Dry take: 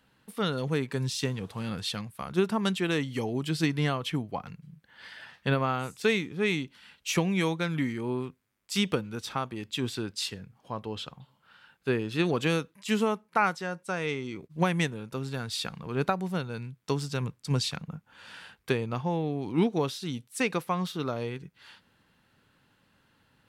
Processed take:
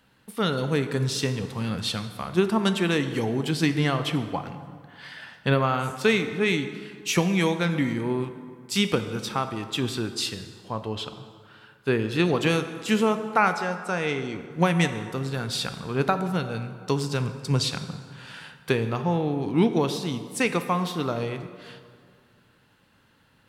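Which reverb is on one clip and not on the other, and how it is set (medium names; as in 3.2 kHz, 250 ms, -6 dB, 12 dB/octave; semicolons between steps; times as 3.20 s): plate-style reverb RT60 2.1 s, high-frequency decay 0.6×, DRR 8.5 dB; trim +4 dB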